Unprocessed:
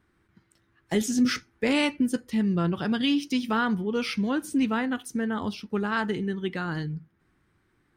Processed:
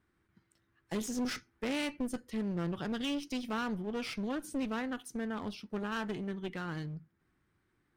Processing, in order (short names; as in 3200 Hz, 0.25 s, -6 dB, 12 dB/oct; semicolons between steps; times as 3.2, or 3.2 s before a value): one-sided clip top -32 dBFS, bottom -18 dBFS; gain -7.5 dB